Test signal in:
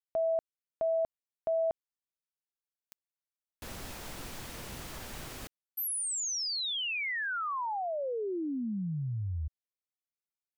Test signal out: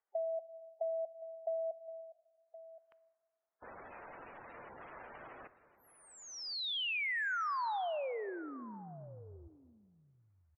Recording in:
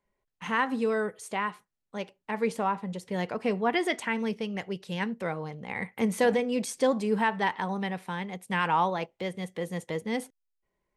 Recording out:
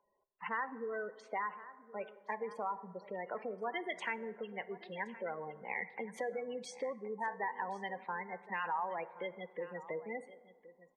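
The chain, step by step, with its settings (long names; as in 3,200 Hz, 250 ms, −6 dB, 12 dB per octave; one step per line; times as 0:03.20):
low-pass that shuts in the quiet parts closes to 1,300 Hz, open at −25.5 dBFS
low-shelf EQ 66 Hz −11.5 dB
gate on every frequency bin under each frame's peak −15 dB strong
in parallel at −2 dB: brickwall limiter −23 dBFS
on the sum: downward compressor, threshold −27 dBFS
three-way crossover with the lows and the highs turned down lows −15 dB, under 430 Hz, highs −18 dB, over 5,100 Hz
upward compression 1.5 to 1, threshold −56 dBFS
on a send: single-tap delay 1,070 ms −17 dB
on the sum: dense smooth reverb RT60 1.9 s, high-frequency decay 0.35×, DRR 15.5 dB
level −5.5 dB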